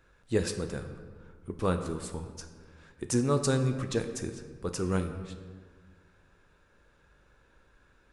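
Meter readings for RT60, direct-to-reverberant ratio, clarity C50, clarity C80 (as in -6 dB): 1.7 s, 6.5 dB, 9.0 dB, 10.0 dB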